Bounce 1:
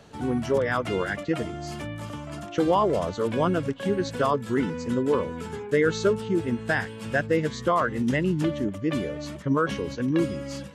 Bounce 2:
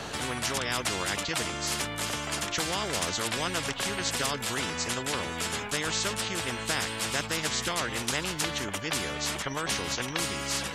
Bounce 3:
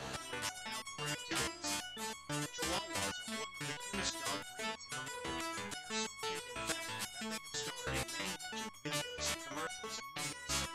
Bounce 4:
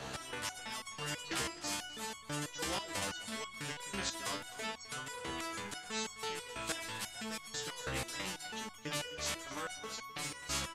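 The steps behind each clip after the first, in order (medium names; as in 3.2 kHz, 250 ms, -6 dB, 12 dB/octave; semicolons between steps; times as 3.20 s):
spectrum-flattening compressor 4:1
resonator arpeggio 6.1 Hz 66–1100 Hz; trim +1.5 dB
delay 258 ms -16 dB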